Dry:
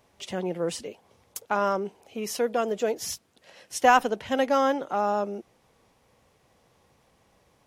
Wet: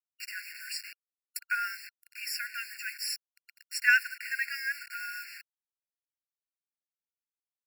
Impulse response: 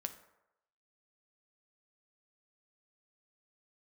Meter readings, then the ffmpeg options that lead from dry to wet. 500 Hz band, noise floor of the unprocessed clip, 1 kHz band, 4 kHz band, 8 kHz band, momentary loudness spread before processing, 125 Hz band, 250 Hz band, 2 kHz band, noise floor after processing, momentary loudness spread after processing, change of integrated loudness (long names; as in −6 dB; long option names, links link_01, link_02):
below −40 dB, −65 dBFS, −16.5 dB, −0.5 dB, −4.5 dB, 16 LU, can't be measured, below −40 dB, +4.5 dB, below −85 dBFS, 18 LU, −5.5 dB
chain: -af "acrusher=bits=6:mix=0:aa=0.000001,equalizer=frequency=8300:width_type=o:width=0.58:gain=-7,afftfilt=real='re*eq(mod(floor(b*sr/1024/1400),2),1)':imag='im*eq(mod(floor(b*sr/1024/1400),2),1)':win_size=1024:overlap=0.75,volume=4.5dB"